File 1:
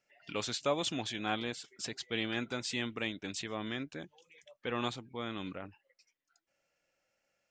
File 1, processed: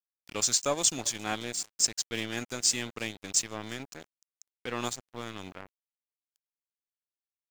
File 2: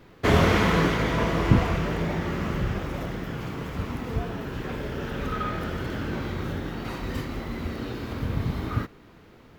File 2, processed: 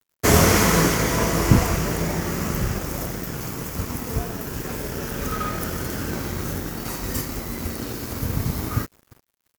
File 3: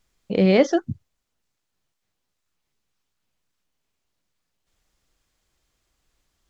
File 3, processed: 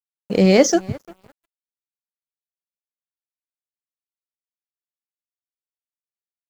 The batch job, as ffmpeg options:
-filter_complex "[0:a]aexciter=amount=9.6:drive=2.2:freq=5.2k,asplit=2[a][b];[b]adelay=348,lowpass=f=3.6k:p=1,volume=-20.5dB,asplit=2[c][d];[d]adelay=348,lowpass=f=3.6k:p=1,volume=0.31[e];[a][c][e]amix=inputs=3:normalize=0,aeval=exprs='sgn(val(0))*max(abs(val(0))-0.00794,0)':c=same,volume=3.5dB"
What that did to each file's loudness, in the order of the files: +7.5, +4.0, +3.5 LU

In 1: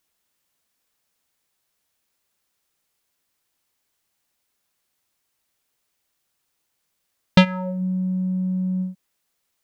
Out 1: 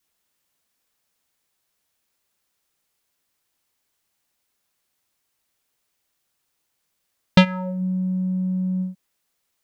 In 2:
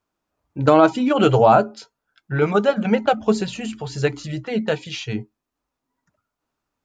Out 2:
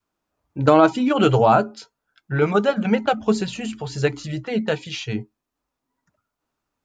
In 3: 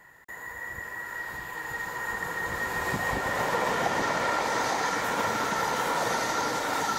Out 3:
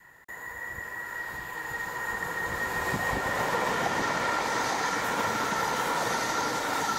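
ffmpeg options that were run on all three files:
-af "adynamicequalizer=threshold=0.0224:dfrequency=600:dqfactor=1.6:tfrequency=600:tqfactor=1.6:attack=5:release=100:ratio=0.375:range=2:mode=cutabove:tftype=bell"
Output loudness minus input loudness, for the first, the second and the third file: 0.0, -1.0, -0.5 LU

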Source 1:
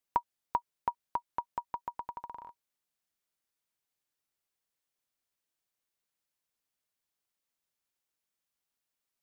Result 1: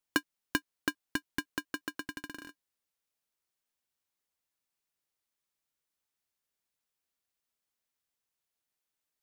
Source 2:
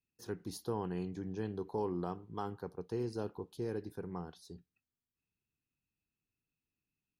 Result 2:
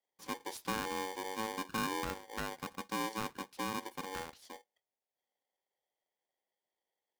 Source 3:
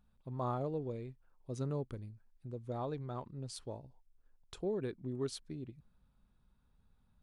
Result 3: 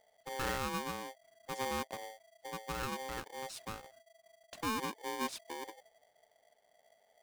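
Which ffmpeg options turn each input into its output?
-af "aeval=exprs='val(0)*sgn(sin(2*PI*660*n/s))':c=same"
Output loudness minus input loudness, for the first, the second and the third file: +1.0, +1.5, +1.0 LU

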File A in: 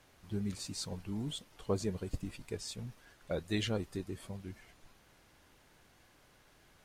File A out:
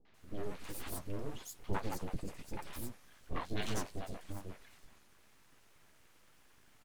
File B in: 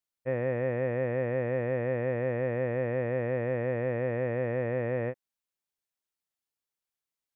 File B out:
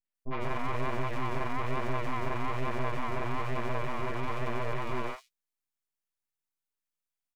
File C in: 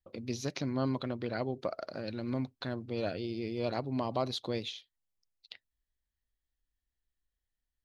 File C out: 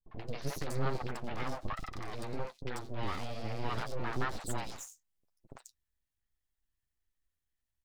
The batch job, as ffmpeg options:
-filter_complex "[0:a]flanger=delay=5.8:depth=9.3:regen=-23:speed=1.1:shape=triangular,aeval=exprs='abs(val(0))':c=same,acrossover=split=600|4200[a][b][c];[b]adelay=50[d];[c]adelay=140[e];[a][d][e]amix=inputs=3:normalize=0,volume=5dB"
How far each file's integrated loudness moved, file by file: -4.5, -4.0, -4.0 LU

